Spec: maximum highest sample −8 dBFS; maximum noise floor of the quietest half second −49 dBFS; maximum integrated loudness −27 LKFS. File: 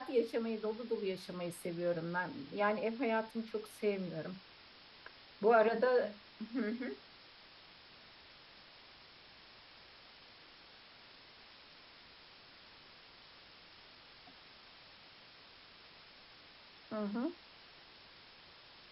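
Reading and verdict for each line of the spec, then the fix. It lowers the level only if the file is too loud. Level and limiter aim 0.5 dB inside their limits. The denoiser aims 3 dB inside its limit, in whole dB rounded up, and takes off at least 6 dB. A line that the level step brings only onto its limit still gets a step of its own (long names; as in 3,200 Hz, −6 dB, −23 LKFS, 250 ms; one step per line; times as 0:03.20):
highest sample −18.0 dBFS: in spec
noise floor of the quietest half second −59 dBFS: in spec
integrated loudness −36.5 LKFS: in spec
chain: no processing needed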